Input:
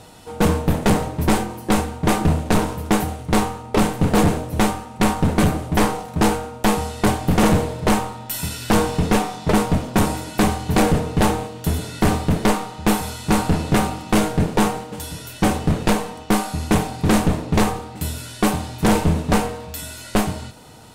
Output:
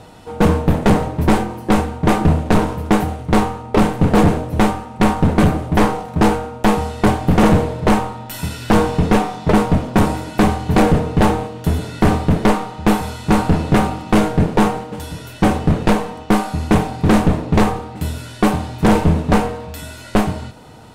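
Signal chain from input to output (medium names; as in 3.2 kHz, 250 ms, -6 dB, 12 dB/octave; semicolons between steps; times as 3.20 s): treble shelf 3.9 kHz -10.5 dB; trim +4 dB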